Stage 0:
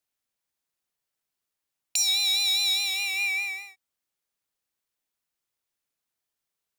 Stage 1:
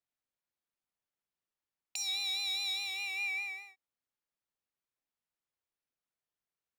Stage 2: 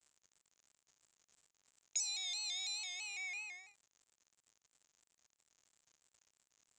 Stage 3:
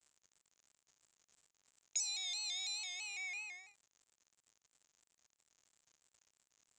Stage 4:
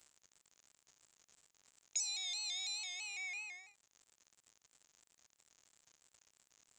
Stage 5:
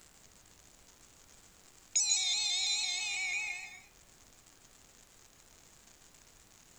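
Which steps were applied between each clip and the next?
treble shelf 4.3 kHz -12 dB; trim -5.5 dB
crackle 130 per s -50 dBFS; four-pole ladder low-pass 7.6 kHz, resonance 75%; vibrato with a chosen wave square 3 Hz, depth 100 cents; trim +2.5 dB
no audible change
upward compressor, threshold -59 dBFS
reverberation RT60 0.45 s, pre-delay 138 ms, DRR 3.5 dB; added noise pink -71 dBFS; trim +7.5 dB

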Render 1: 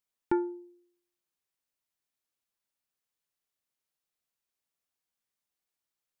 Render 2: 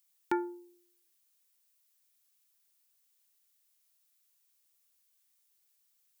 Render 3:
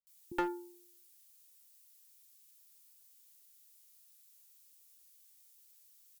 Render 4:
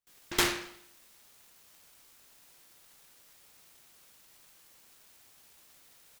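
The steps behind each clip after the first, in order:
tilt EQ +4 dB/octave; trim +1.5 dB
treble shelf 2.6 kHz +10.5 dB; bands offset in time lows, highs 70 ms, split 230 Hz; one-sided clip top -31 dBFS
delay time shaken by noise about 1.8 kHz, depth 0.49 ms; trim +6.5 dB

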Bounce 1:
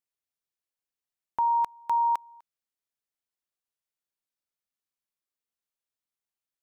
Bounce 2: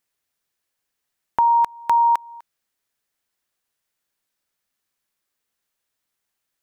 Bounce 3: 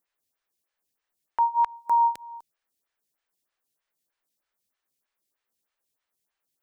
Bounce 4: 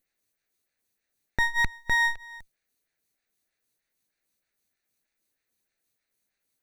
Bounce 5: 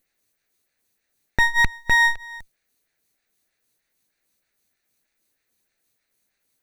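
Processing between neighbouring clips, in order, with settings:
peaking EQ 1.7 kHz +3.5 dB 0.51 oct; in parallel at +3 dB: compression, threshold -33 dBFS, peak gain reduction 10 dB; on the sum: trim +4.5 dB
peak limiter -15.5 dBFS, peak gain reduction 8 dB; lamp-driven phase shifter 3.2 Hz
comb filter that takes the minimum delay 0.47 ms; trim +3.5 dB
rattle on loud lows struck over -39 dBFS, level -30 dBFS; trim +6.5 dB

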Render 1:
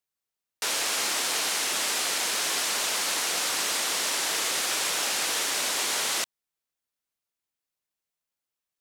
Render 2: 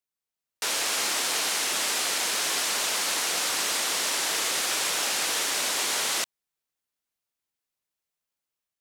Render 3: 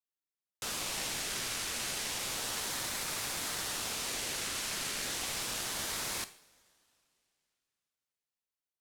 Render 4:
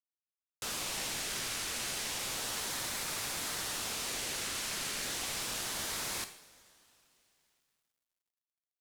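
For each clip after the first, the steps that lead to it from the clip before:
level rider gain up to 4 dB; trim -3.5 dB
two-slope reverb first 0.53 s, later 3.1 s, from -20 dB, DRR 11.5 dB; ring modulator with a swept carrier 1.9 kHz, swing 60%, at 0.32 Hz; trim -7 dB
companding laws mixed up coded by mu; trim -2.5 dB

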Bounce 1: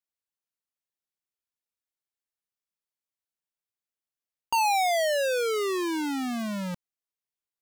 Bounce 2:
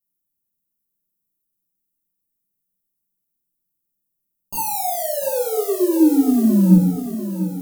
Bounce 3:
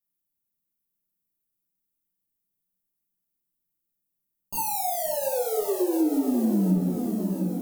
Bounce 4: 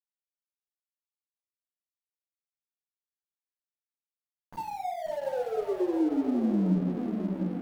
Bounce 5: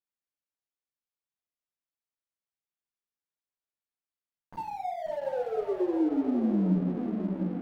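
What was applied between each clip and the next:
FFT filter 120 Hz 0 dB, 180 Hz +7 dB, 400 Hz 0 dB, 610 Hz -9 dB, 2.1 kHz -22 dB, 3.5 kHz -16 dB, 15 kHz +12 dB; on a send: thinning echo 694 ms, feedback 54%, high-pass 190 Hz, level -9 dB; on the sum: simulated room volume 640 m³, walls furnished, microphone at 6.6 m
compression 3:1, threshold -18 dBFS, peak gain reduction 9 dB; filtered feedback delay 537 ms, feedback 69%, low-pass 3.5 kHz, level -10 dB; trim -4 dB
Savitzky-Golay filter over 41 samples; crossover distortion -42.5 dBFS; trim -2.5 dB
treble shelf 4.8 kHz -11.5 dB

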